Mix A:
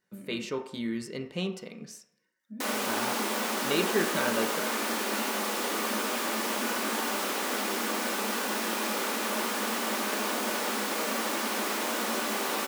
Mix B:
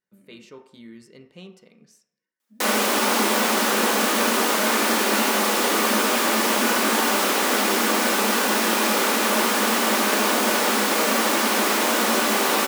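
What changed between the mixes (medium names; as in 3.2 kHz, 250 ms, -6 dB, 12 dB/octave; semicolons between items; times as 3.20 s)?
speech -10.5 dB; background +10.0 dB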